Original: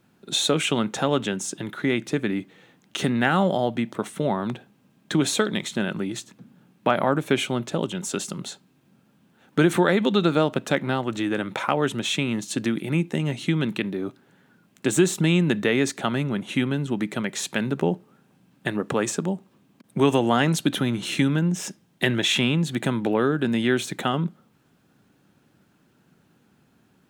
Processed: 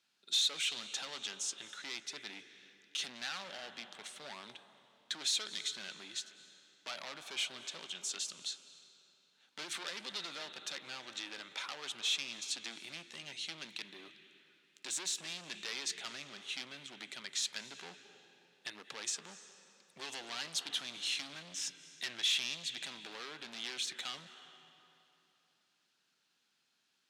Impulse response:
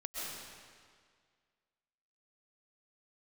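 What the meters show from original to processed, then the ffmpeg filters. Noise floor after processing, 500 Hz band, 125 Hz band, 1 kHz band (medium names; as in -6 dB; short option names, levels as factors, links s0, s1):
-78 dBFS, -29.5 dB, -38.0 dB, -22.0 dB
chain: -filter_complex "[0:a]asplit=2[s0][s1];[1:a]atrim=start_sample=2205,asetrate=27783,aresample=44100[s2];[s1][s2]afir=irnorm=-1:irlink=0,volume=0.119[s3];[s0][s3]amix=inputs=2:normalize=0,asoftclip=type=hard:threshold=0.075,bandpass=f=4500:t=q:w=1.5:csg=0,volume=0.794"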